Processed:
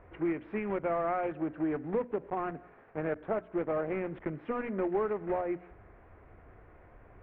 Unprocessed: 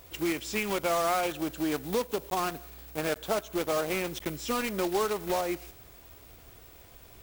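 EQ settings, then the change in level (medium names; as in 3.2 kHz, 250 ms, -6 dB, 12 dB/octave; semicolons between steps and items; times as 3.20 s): steep low-pass 2 kHz 36 dB/octave; hum notches 60/120/180/240/300 Hz; dynamic bell 1.2 kHz, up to -6 dB, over -42 dBFS, Q 0.74; 0.0 dB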